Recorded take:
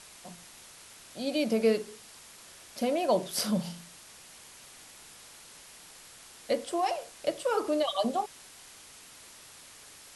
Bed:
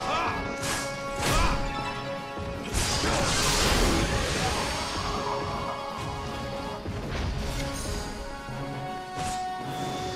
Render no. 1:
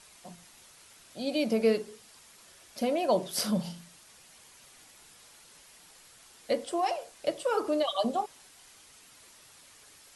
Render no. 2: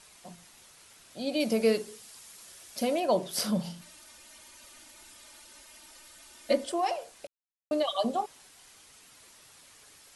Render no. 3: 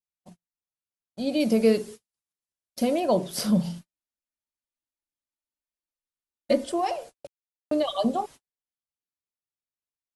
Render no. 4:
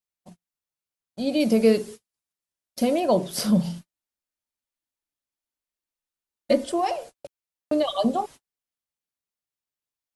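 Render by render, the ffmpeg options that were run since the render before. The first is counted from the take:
-af "afftdn=nr=6:nf=-52"
-filter_complex "[0:a]asettb=1/sr,asplit=3[a][b][c];[a]atrim=end=1.404[d];[b]atrim=start=1.4:end=3,asetpts=PTS-STARTPTS,afade=t=in:d=0.004:c=qsin,afade=t=out:st=1.596:d=0.004:c=qsin,highshelf=f=4.3k:g=8[e];[c]atrim=start=2.996[f];[d][e]acrossfade=d=0.004:c1=hsin:c2=qsin[g];[g][f]acrossfade=d=0.004:c1=qsin:c2=hsin,asettb=1/sr,asplit=3[h][i][j];[h]atrim=end=3.814[k];[i]atrim=start=3.81:end=6.72,asetpts=PTS-STARTPTS,afade=t=in:d=0.004:c=qsin,afade=t=out:st=2.906:d=0.004:c=qsin,aecho=1:1:3.3:1,atrim=end_sample=128331[l];[j]atrim=start=6.716[m];[k][l]acrossfade=d=0.004:c1=hsin:c2=qsin[n];[n][m]acrossfade=d=0.004:c1=qsin:c2=hsin,asplit=3[o][p][q];[o]atrim=end=7.27,asetpts=PTS-STARTPTS,afade=t=out:st=7.266:d=0.004:c=hsin[r];[p]atrim=start=7.27:end=7.71,asetpts=PTS-STARTPTS,volume=0[s];[q]atrim=start=7.71,asetpts=PTS-STARTPTS,afade=t=in:d=0.004:c=hsin[t];[r][s][t]concat=n=3:v=0:a=1"
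-af "agate=range=-49dB:threshold=-44dB:ratio=16:detection=peak,lowshelf=f=360:g=10"
-af "volume=2dB"

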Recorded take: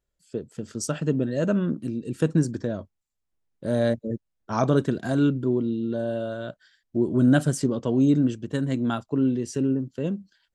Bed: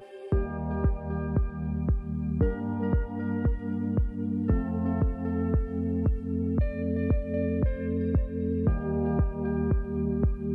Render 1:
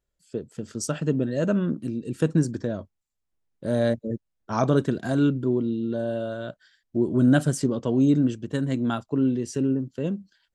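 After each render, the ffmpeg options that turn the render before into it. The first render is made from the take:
-af anull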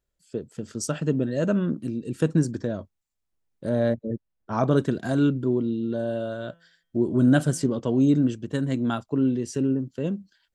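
-filter_complex "[0:a]asettb=1/sr,asplit=3[a][b][c];[a]atrim=end=3.694[d];[b]atrim=start=3.69:end=4.71,asetpts=PTS-STARTPTS,afade=t=in:d=0.004:c=qsin,afade=t=out:st=1.016:d=0.004:c=qsin,aemphasis=mode=reproduction:type=75kf[e];[c]atrim=start=4.706[f];[d][e]acrossfade=d=0.004:c1=hsin:c2=qsin[g];[g][f]acrossfade=d=0.004:c1=qsin:c2=hsin,asettb=1/sr,asplit=3[h][i][j];[h]atrim=end=6.364[k];[i]atrim=start=6.36:end=7.8,asetpts=PTS-STARTPTS,afade=t=in:d=0.004:c=qsin,afade=t=out:st=1.436:d=0.004:c=qsin,bandreject=f=168.8:t=h:w=4,bandreject=f=337.6:t=h:w=4,bandreject=f=506.4:t=h:w=4,bandreject=f=675.2:t=h:w=4,bandreject=f=844:t=h:w=4,bandreject=f=1.0128k:t=h:w=4,bandreject=f=1.1816k:t=h:w=4,bandreject=f=1.3504k:t=h:w=4,bandreject=f=1.5192k:t=h:w=4,bandreject=f=1.688k:t=h:w=4,bandreject=f=1.8568k:t=h:w=4,bandreject=f=2.0256k:t=h:w=4,bandreject=f=2.1944k:t=h:w=4,bandreject=f=2.3632k:t=h:w=4,bandreject=f=2.532k:t=h:w=4,bandreject=f=2.7008k:t=h:w=4,bandreject=f=2.8696k:t=h:w=4,bandreject=f=3.0384k:t=h:w=4,bandreject=f=3.2072k:t=h:w=4,bandreject=f=3.376k:t=h:w=4,bandreject=f=3.5448k:t=h:w=4[l];[j]atrim=start=7.796[m];[k][l]acrossfade=d=0.004:c1=hsin:c2=qsin[n];[n][m]acrossfade=d=0.004:c1=qsin:c2=hsin"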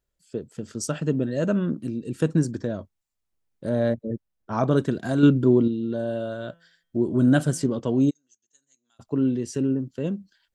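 -filter_complex "[0:a]asplit=3[a][b][c];[a]afade=t=out:st=8.09:d=0.02[d];[b]bandpass=f=6.5k:t=q:w=18,afade=t=in:st=8.09:d=0.02,afade=t=out:st=8.99:d=0.02[e];[c]afade=t=in:st=8.99:d=0.02[f];[d][e][f]amix=inputs=3:normalize=0,asplit=3[g][h][i];[g]atrim=end=5.232[j];[h]atrim=start=5.228:end=5.682,asetpts=PTS-STARTPTS,volume=6dB[k];[i]atrim=start=5.678[l];[j][k]acrossfade=d=0.004:c1=hsin:c2=hsin[m];[m][l]acrossfade=d=0.004:c1=hsin:c2=hsin"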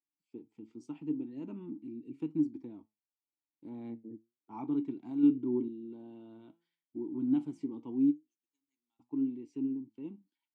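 -filter_complex "[0:a]asplit=3[a][b][c];[a]bandpass=f=300:t=q:w=8,volume=0dB[d];[b]bandpass=f=870:t=q:w=8,volume=-6dB[e];[c]bandpass=f=2.24k:t=q:w=8,volume=-9dB[f];[d][e][f]amix=inputs=3:normalize=0,flanger=delay=6.3:depth=3.2:regen=78:speed=0.85:shape=triangular"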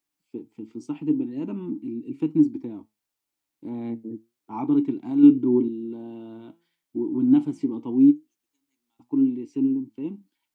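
-af "volume=11.5dB"

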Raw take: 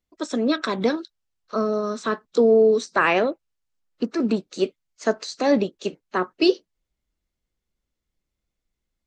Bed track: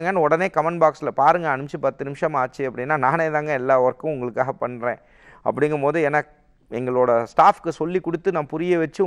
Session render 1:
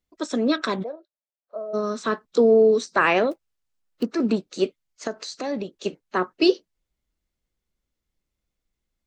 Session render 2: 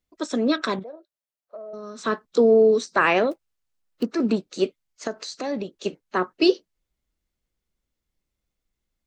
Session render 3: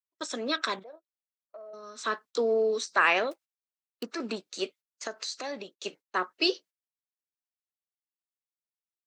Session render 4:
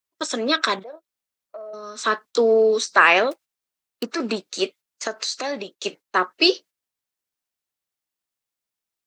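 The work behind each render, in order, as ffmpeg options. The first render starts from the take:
-filter_complex "[0:a]asplit=3[a][b][c];[a]afade=t=out:st=0.82:d=0.02[d];[b]bandpass=f=610:t=q:w=7.2,afade=t=in:st=0.82:d=0.02,afade=t=out:st=1.73:d=0.02[e];[c]afade=t=in:st=1.73:d=0.02[f];[d][e][f]amix=inputs=3:normalize=0,asettb=1/sr,asplit=3[g][h][i];[g]atrim=end=3.314[j];[h]atrim=start=3.31:end=4.03,asetpts=PTS-STARTPTS,afade=t=in:d=0.004:c=qsin,afade=t=out:st=0.716:d=0.004:c=qsin,acrusher=bits=5:mode=log:mix=0:aa=0.000001[k];[i]atrim=start=4.026[l];[j][k]acrossfade=d=0.004:c1=hsin:c2=qsin[m];[m][l]acrossfade=d=0.004:c1=qsin:c2=hsin,asettb=1/sr,asplit=3[n][o][p];[n]atrim=end=5.074[q];[o]atrim=start=5.07:end=5.86,asetpts=PTS-STARTPTS,afade=t=in:d=0.004:c=qsin,afade=t=out:st=0.786:d=0.004:c=qsin,acompressor=threshold=-31dB:ratio=2:attack=3.2:release=140:knee=1:detection=peak[r];[p]atrim=start=5.856[s];[q][r]acrossfade=d=0.004:c1=hsin:c2=qsin[t];[t][s]acrossfade=d=0.004:c1=qsin:c2=hsin"
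-filter_complex "[0:a]asettb=1/sr,asplit=3[a][b][c];[a]atrim=end=0.794[d];[b]atrim=start=0.79:end=1.99,asetpts=PTS-STARTPTS,afade=t=in:d=0.004:c=qsin,afade=t=out:st=1.196:d=0.004:c=qsin,acompressor=threshold=-34dB:ratio=6:attack=3.2:release=140:knee=1:detection=peak[e];[c]atrim=start=1.986[f];[d][e]acrossfade=d=0.004:c1=hsin:c2=qsin[g];[g][f]acrossfade=d=0.004:c1=qsin:c2=hsin"
-af "highpass=f=1.3k:p=1,agate=range=-29dB:threshold=-49dB:ratio=16:detection=peak"
-af "volume=9dB,alimiter=limit=-2dB:level=0:latency=1"

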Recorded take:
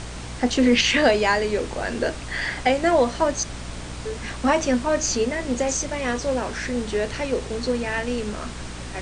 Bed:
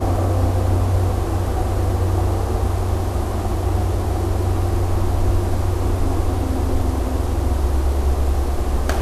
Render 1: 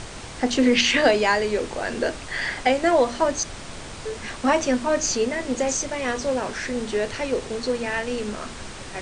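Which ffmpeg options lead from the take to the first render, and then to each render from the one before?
-af "bandreject=f=60:t=h:w=6,bandreject=f=120:t=h:w=6,bandreject=f=180:t=h:w=6,bandreject=f=240:t=h:w=6,bandreject=f=300:t=h:w=6"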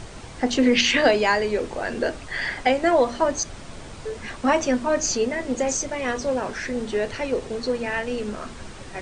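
-af "afftdn=nr=6:nf=-37"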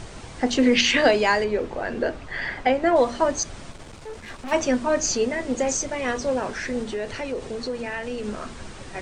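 -filter_complex "[0:a]asettb=1/sr,asplit=3[a][b][c];[a]atrim=end=1.444[d];[b]atrim=start=1.44:end=2.96,asetpts=PTS-STARTPTS,afade=t=in:d=0.004:c=qsin,afade=t=out:st=1.516:d=0.004:c=qsin,lowpass=f=2.4k:p=1[e];[c]atrim=start=2.956[f];[d][e]acrossfade=d=0.004:c1=hsin:c2=qsin[g];[g][f]acrossfade=d=0.004:c1=qsin:c2=hsin,asplit=3[h][i][j];[h]afade=t=out:st=3.7:d=0.02[k];[i]aeval=exprs='(tanh(39.8*val(0)+0.6)-tanh(0.6))/39.8':c=same,afade=t=in:st=3.7:d=0.02,afade=t=out:st=4.51:d=0.02[l];[j]afade=t=in:st=4.51:d=0.02[m];[k][l][m]amix=inputs=3:normalize=0,asettb=1/sr,asplit=3[n][o][p];[n]atrim=end=6.834[q];[o]atrim=start=6.83:end=8.24,asetpts=PTS-STARTPTS,afade=t=in:d=0.004:c=qsin,afade=t=out:st=1.406:d=0.004:c=qsin,acompressor=threshold=-28dB:ratio=2:attack=3.2:release=140:knee=1:detection=peak[r];[p]atrim=start=8.236[s];[q][r]acrossfade=d=0.004:c1=hsin:c2=qsin[t];[t][s]acrossfade=d=0.004:c1=qsin:c2=hsin"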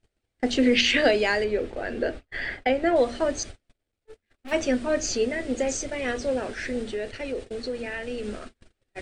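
-af "agate=range=-39dB:threshold=-32dB:ratio=16:detection=peak,equalizer=f=160:t=o:w=0.67:g=-9,equalizer=f=1k:t=o:w=0.67:g=-12,equalizer=f=6.3k:t=o:w=0.67:g=-6"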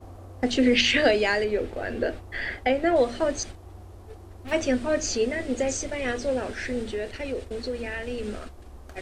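-filter_complex "[1:a]volume=-25dB[a];[0:a][a]amix=inputs=2:normalize=0"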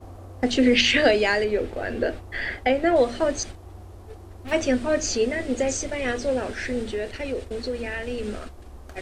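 -af "volume=2dB"

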